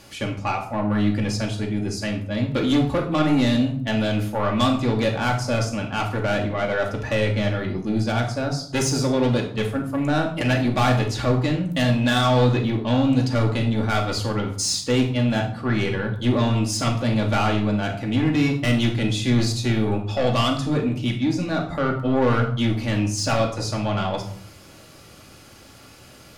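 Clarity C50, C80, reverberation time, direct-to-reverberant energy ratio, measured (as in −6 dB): 8.0 dB, 12.0 dB, 0.55 s, 0.0 dB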